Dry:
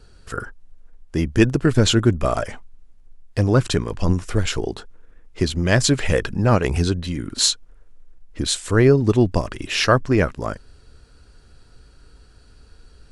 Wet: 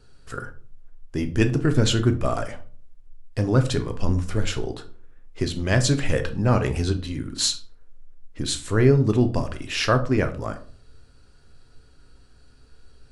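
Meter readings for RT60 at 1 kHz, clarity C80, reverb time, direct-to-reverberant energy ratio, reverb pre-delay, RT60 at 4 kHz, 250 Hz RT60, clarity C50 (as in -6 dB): 0.40 s, 18.5 dB, 0.45 s, 7.5 dB, 7 ms, 0.30 s, 0.60 s, 14.0 dB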